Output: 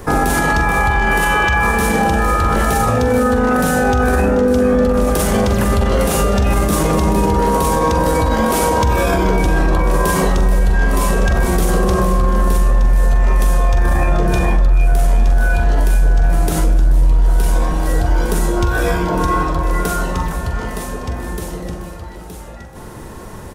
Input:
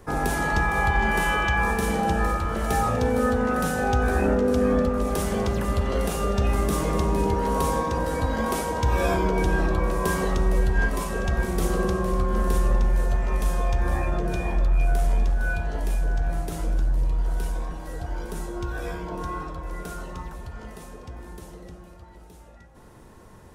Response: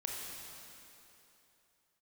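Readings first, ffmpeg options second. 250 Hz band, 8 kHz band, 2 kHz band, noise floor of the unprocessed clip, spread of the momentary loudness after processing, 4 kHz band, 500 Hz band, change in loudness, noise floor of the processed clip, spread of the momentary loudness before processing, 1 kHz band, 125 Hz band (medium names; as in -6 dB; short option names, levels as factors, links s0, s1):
+9.5 dB, +11.5 dB, +9.0 dB, -47 dBFS, 11 LU, +10.0 dB, +9.0 dB, +9.0 dB, -32 dBFS, 13 LU, +9.5 dB, +9.5 dB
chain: -af "highshelf=f=10000:g=4.5,aecho=1:1:44|432:0.355|0.2,alimiter=level_in=11.2:limit=0.891:release=50:level=0:latency=1,volume=0.531"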